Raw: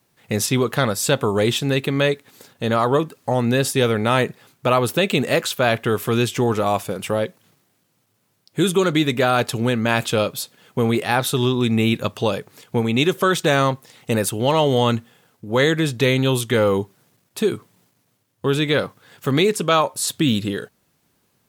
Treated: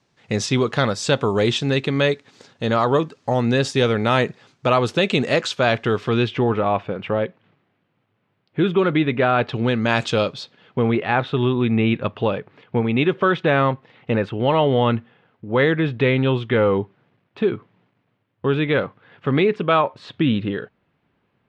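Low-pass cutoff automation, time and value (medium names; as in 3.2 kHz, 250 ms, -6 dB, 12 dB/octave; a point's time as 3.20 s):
low-pass 24 dB/octave
5.77 s 6.4 kHz
6.53 s 2.9 kHz
9.37 s 2.9 kHz
9.99 s 6.8 kHz
10.95 s 2.9 kHz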